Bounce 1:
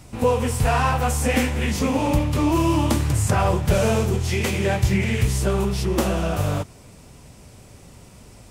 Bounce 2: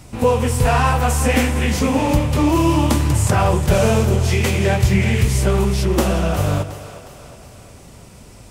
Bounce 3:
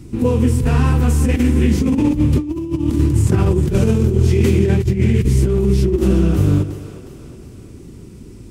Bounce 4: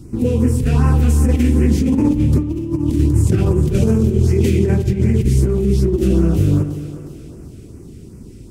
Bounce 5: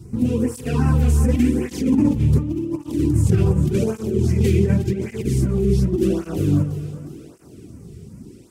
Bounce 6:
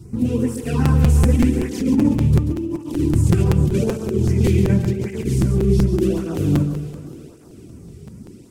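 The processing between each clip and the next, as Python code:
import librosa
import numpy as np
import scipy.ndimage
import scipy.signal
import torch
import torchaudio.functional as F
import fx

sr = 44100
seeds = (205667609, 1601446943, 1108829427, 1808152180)

y1 = fx.echo_split(x, sr, split_hz=420.0, low_ms=121, high_ms=361, feedback_pct=52, wet_db=-13.0)
y1 = y1 * 10.0 ** (3.5 / 20.0)
y2 = fx.low_shelf_res(y1, sr, hz=470.0, db=10.0, q=3.0)
y2 = fx.over_compress(y2, sr, threshold_db=-6.0, ratio=-0.5)
y2 = y2 * 10.0 ** (-7.5 / 20.0)
y3 = fx.filter_lfo_notch(y2, sr, shape='sine', hz=2.6, low_hz=900.0, high_hz=3600.0, q=0.84)
y3 = fx.rev_spring(y3, sr, rt60_s=2.2, pass_ms=(54, 59), chirp_ms=35, drr_db=12.0)
y4 = fx.flanger_cancel(y3, sr, hz=0.88, depth_ms=3.9)
y5 = y4 + 10.0 ** (-8.0 / 20.0) * np.pad(y4, (int(137 * sr / 1000.0), 0))[:len(y4)]
y5 = fx.buffer_crackle(y5, sr, first_s=0.85, period_s=0.19, block=256, kind='repeat')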